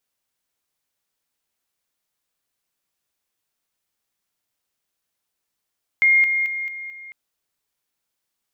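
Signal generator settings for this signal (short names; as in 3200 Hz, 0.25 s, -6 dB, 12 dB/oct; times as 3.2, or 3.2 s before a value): level ladder 2130 Hz -12 dBFS, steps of -6 dB, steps 5, 0.22 s 0.00 s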